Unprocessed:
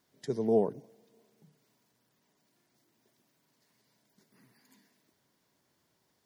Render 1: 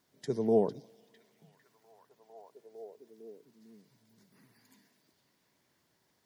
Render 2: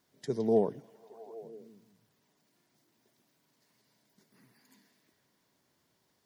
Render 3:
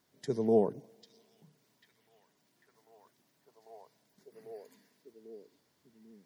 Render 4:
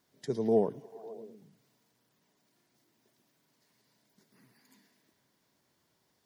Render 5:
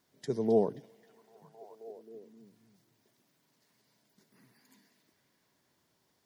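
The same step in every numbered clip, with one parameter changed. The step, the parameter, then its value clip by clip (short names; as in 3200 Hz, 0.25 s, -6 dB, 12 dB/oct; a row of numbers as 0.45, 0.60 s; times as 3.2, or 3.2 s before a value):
delay with a stepping band-pass, time: 0.453, 0.163, 0.795, 0.11, 0.265 s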